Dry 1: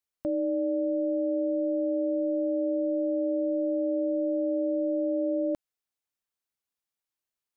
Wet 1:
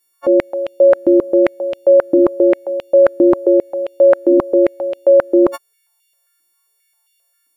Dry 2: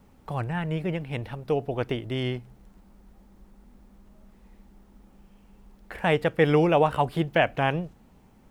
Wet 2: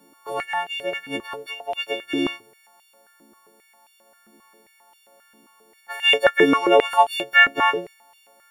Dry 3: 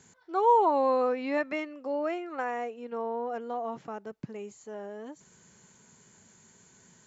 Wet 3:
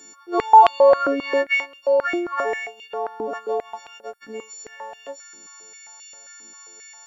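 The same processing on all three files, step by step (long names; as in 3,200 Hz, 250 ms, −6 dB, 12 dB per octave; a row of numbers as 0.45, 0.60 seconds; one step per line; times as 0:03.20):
every partial snapped to a pitch grid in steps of 4 semitones
high-pass on a step sequencer 7.5 Hz 300–2,900 Hz
normalise the peak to −2 dBFS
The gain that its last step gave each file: +11.5, −0.5, +3.5 decibels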